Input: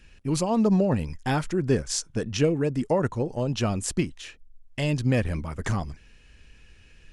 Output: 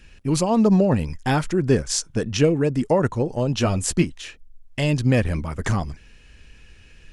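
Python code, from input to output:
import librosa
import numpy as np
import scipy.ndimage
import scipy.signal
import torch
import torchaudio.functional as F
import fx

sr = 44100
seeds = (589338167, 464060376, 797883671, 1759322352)

y = fx.doubler(x, sr, ms=12.0, db=-6.0, at=(3.59, 4.04))
y = y * librosa.db_to_amplitude(4.5)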